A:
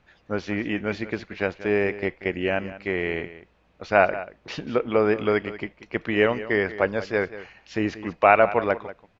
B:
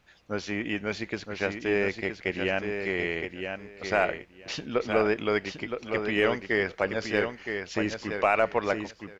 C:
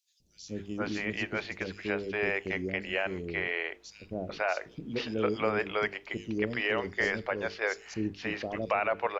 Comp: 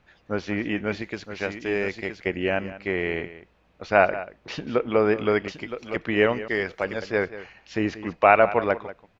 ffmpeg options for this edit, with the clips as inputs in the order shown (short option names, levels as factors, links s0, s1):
-filter_complex "[1:a]asplit=3[s0][s1][s2];[0:a]asplit=4[s3][s4][s5][s6];[s3]atrim=end=1.022[s7];[s0]atrim=start=1.018:end=2.262[s8];[s4]atrim=start=2.258:end=5.482[s9];[s1]atrim=start=5.478:end=5.962[s10];[s5]atrim=start=5.958:end=6.482[s11];[s2]atrim=start=6.478:end=7.022[s12];[s6]atrim=start=7.018[s13];[s7][s8]acrossfade=d=0.004:c1=hsin:c2=hsin[s14];[s14][s9]acrossfade=d=0.004:c1=hsin:c2=hsin[s15];[s15][s10]acrossfade=d=0.004:c1=hsin:c2=hsin[s16];[s16][s11]acrossfade=d=0.004:c1=hsin:c2=hsin[s17];[s17][s12]acrossfade=d=0.004:c1=hsin:c2=hsin[s18];[s18][s13]acrossfade=d=0.004:c1=hsin:c2=hsin"